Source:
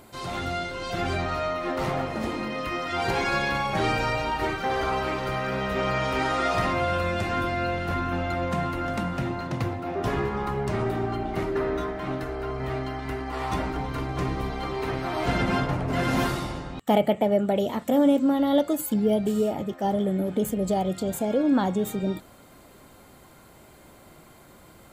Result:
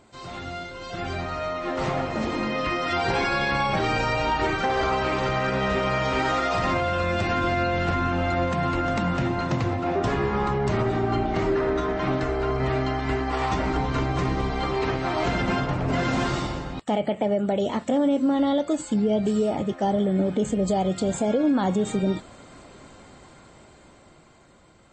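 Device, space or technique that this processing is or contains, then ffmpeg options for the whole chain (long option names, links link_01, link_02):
low-bitrate web radio: -filter_complex "[0:a]asettb=1/sr,asplit=3[link_01][link_02][link_03];[link_01]atrim=end=2.514[link_04];[link_02]atrim=start=2.51:end=3.86,asetpts=PTS-STARTPTS,afade=type=in:duration=0.004:curve=qsin,afade=type=out:start_time=1.346:duration=0.004:curve=qsin,bandreject=frequency=6700:width=7.9[link_05];[link_03]atrim=start=3.856[link_06];[link_04][link_05]acrossfade=duration=0.004:curve1=hsin:curve2=qsin[link_07];[link_07][link_06]acrossfade=duration=0.004:curve1=qsin:curve2=hsin,dynaudnorm=framelen=440:gausssize=9:maxgain=12dB,alimiter=limit=-10dB:level=0:latency=1:release=124,volume=-4.5dB" -ar 22050 -c:a libmp3lame -b:a 32k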